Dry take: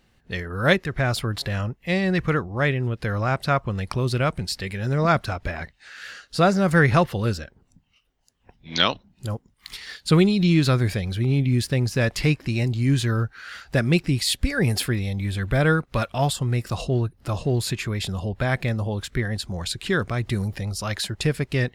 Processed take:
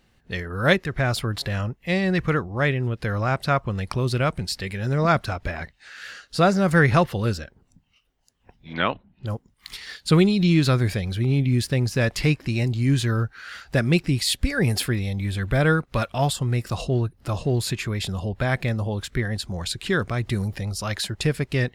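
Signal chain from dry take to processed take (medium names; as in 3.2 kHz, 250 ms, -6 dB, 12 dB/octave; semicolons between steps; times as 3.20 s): 8.72–9.26 s: low-pass 2.1 kHz -> 3.8 kHz 24 dB/octave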